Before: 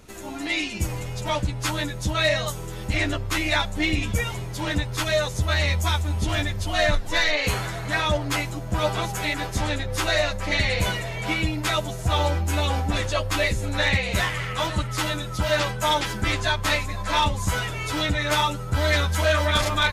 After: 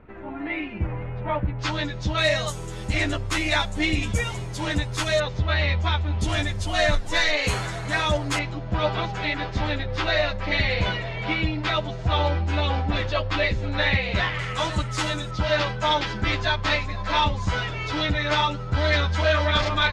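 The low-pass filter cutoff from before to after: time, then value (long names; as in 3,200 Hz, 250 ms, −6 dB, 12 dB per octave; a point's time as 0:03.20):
low-pass filter 24 dB per octave
2,100 Hz
from 0:01.59 5,200 Hz
from 0:02.18 9,900 Hz
from 0:05.20 4,000 Hz
from 0:06.21 9,900 Hz
from 0:08.39 4,400 Hz
from 0:14.39 8,400 Hz
from 0:15.31 5,100 Hz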